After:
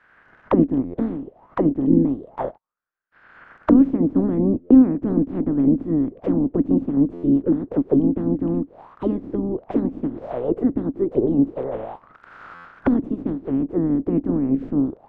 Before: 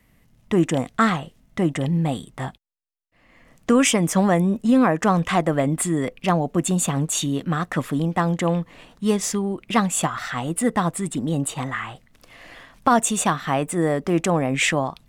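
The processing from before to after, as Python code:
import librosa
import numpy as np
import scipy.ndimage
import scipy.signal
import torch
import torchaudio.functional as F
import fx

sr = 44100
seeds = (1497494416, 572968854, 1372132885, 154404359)

y = fx.spec_clip(x, sr, under_db=29)
y = fx.buffer_glitch(y, sr, at_s=(0.84, 4.6, 7.13, 12.54), block=512, repeats=8)
y = fx.envelope_lowpass(y, sr, base_hz=280.0, top_hz=1600.0, q=6.9, full_db=-20.0, direction='down')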